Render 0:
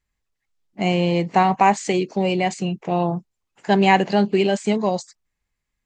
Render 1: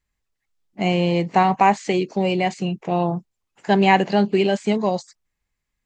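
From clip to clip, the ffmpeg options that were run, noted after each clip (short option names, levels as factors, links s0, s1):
-filter_complex "[0:a]acrossover=split=5300[s0][s1];[s1]acompressor=threshold=0.00562:ratio=4:attack=1:release=60[s2];[s0][s2]amix=inputs=2:normalize=0"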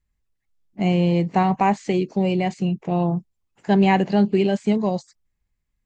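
-af "lowshelf=f=300:g=11,volume=0.531"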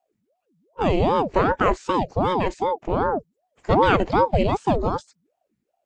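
-af "aeval=exprs='val(0)*sin(2*PI*450*n/s+450*0.65/2.6*sin(2*PI*2.6*n/s))':c=same,volume=1.26"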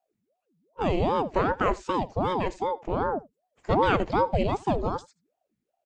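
-af "aecho=1:1:80:0.0841,volume=0.562"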